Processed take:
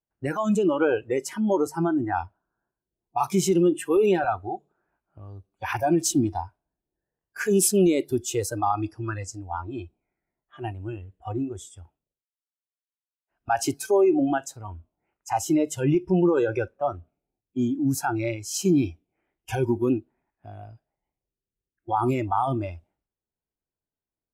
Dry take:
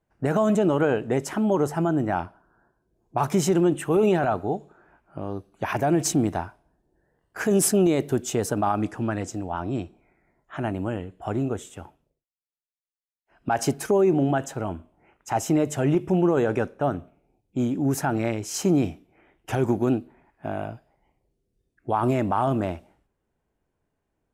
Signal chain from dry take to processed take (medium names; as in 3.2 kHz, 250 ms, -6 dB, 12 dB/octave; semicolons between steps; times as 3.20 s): spectral noise reduction 19 dB; trim +1 dB